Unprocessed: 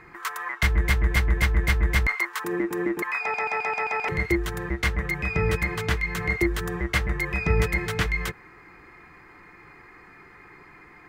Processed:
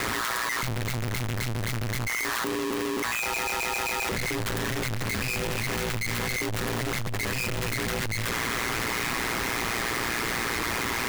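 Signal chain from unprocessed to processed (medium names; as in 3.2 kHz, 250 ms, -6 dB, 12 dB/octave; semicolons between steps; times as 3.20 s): one-bit comparator; ring modulator 59 Hz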